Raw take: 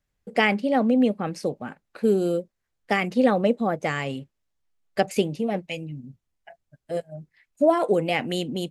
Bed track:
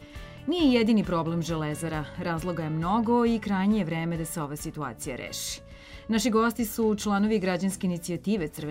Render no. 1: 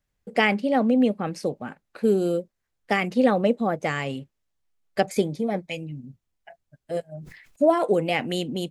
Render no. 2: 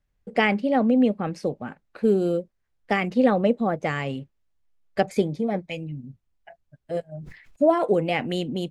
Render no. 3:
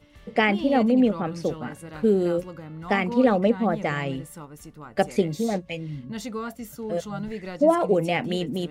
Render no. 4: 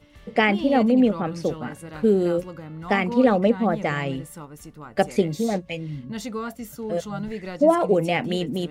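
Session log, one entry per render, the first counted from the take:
5.09–5.71 Butterworth band-stop 2800 Hz, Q 4.4; 7.14–7.71 sustainer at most 60 dB/s
LPF 3800 Hz 6 dB/oct; low shelf 84 Hz +7.5 dB
add bed track -9 dB
gain +1.5 dB

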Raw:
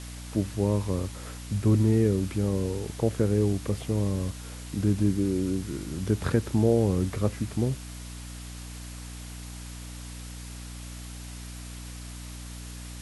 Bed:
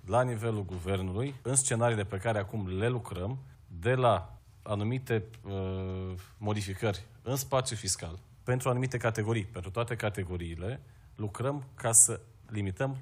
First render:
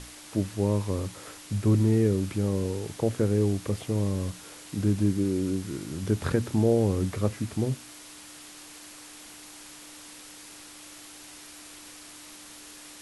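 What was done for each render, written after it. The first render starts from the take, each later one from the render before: notches 60/120/180/240 Hz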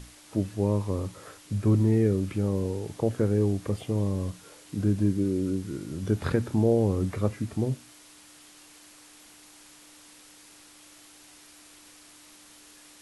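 noise print and reduce 6 dB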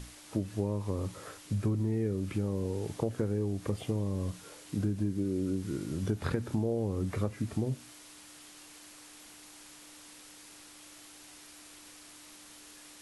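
compressor, threshold -27 dBFS, peak gain reduction 10 dB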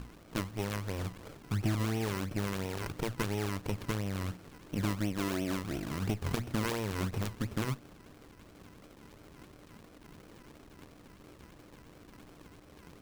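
decimation with a swept rate 30×, swing 100% 2.9 Hz; running maximum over 33 samples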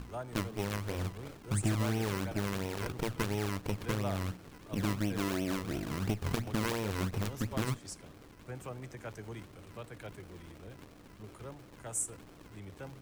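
add bed -14.5 dB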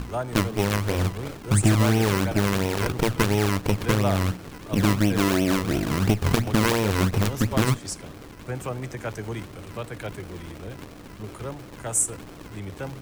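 gain +12 dB

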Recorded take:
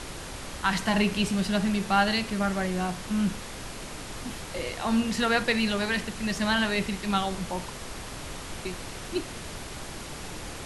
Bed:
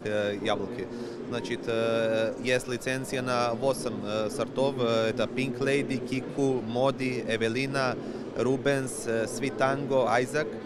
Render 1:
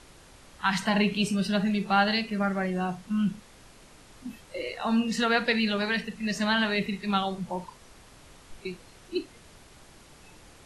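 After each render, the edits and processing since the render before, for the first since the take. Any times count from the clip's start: noise print and reduce 14 dB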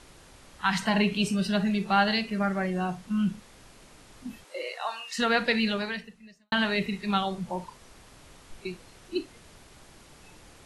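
4.43–5.18 HPF 290 Hz -> 1100 Hz 24 dB/oct; 5.69–6.52 fade out quadratic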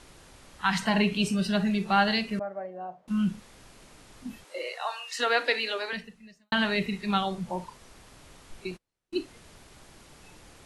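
2.39–3.08 band-pass 620 Hz, Q 3.5; 4.58–5.93 steep high-pass 270 Hz 72 dB/oct; 8.71–9.19 gate -45 dBFS, range -35 dB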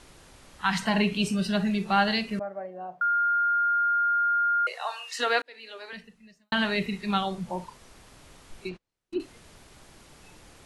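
3.01–4.67 bleep 1410 Hz -21 dBFS; 5.42–6.57 fade in; 8.68–9.2 treble ducked by the level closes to 1500 Hz, closed at -30.5 dBFS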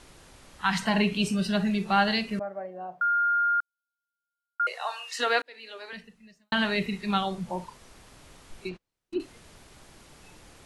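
3.6–4.6 rippled Chebyshev high-pass 2900 Hz, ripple 3 dB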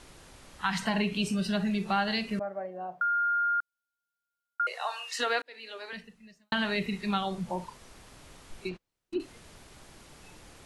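compressor 2:1, threshold -28 dBFS, peak gain reduction 6.5 dB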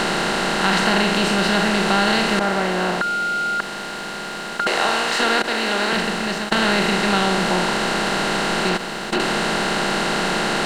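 per-bin compression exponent 0.2; sample leveller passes 1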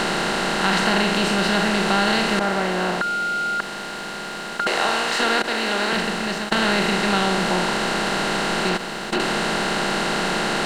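gain -1.5 dB

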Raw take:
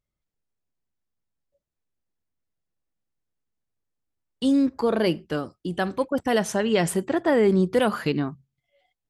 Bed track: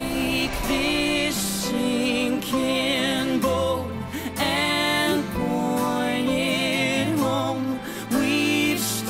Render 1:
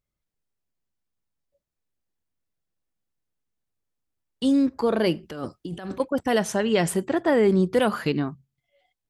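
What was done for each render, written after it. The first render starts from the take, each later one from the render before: 5.23–6 negative-ratio compressor -33 dBFS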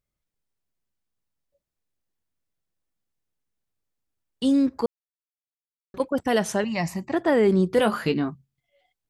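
4.86–5.94 mute; 6.64–7.13 fixed phaser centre 2200 Hz, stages 8; 7.76–8.3 doubler 18 ms -8.5 dB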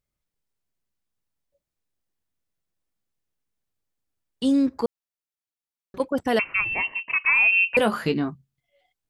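6.39–7.77 inverted band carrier 2900 Hz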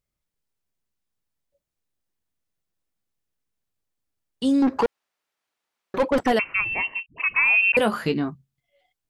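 4.62–6.32 overdrive pedal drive 27 dB, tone 1500 Hz, clips at -11.5 dBFS; 7.06–7.72 dispersion highs, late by 0.105 s, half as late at 360 Hz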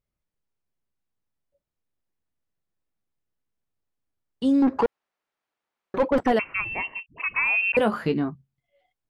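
high shelf 3000 Hz -11 dB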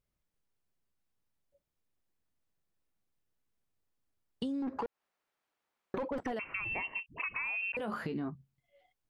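limiter -21 dBFS, peak gain reduction 11.5 dB; compressor 6:1, threshold -34 dBFS, peak gain reduction 10 dB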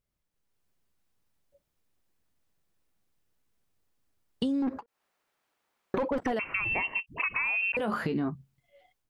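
AGC gain up to 7 dB; ending taper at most 580 dB/s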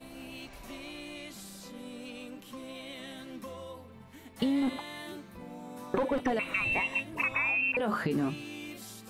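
add bed track -21 dB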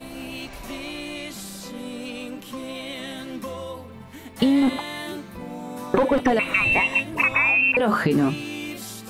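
gain +10 dB

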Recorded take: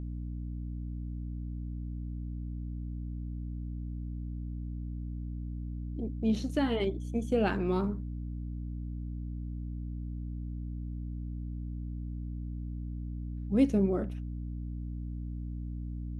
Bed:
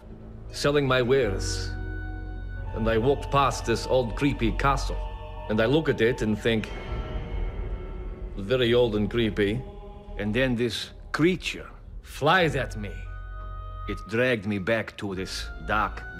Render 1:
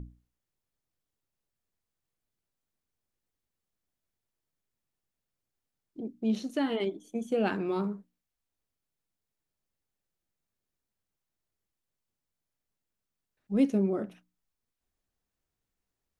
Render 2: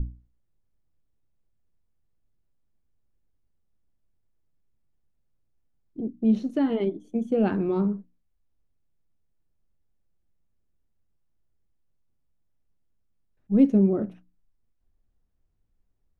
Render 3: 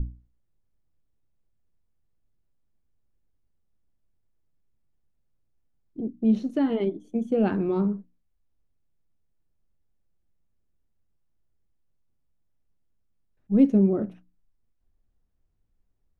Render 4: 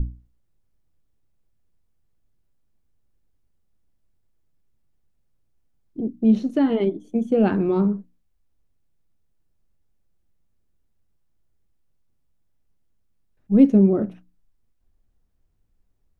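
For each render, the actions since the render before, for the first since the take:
notches 60/120/180/240/300 Hz
tilt -3.5 dB/oct
nothing audible
gain +4.5 dB

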